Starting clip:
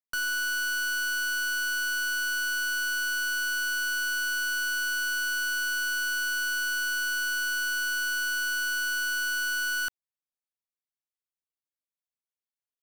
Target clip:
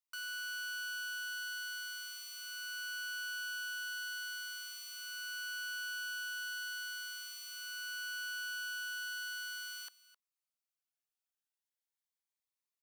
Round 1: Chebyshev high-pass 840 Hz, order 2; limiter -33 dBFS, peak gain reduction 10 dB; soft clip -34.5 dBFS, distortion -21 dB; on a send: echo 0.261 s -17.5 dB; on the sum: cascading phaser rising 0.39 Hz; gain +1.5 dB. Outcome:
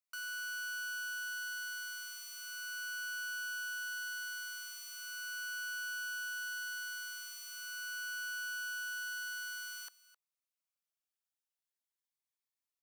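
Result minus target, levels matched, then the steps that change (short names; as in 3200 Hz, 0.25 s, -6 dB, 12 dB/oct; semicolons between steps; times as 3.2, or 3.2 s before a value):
4000 Hz band -3.5 dB
add after Chebyshev high-pass: dynamic EQ 3300 Hz, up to +6 dB, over -46 dBFS, Q 0.99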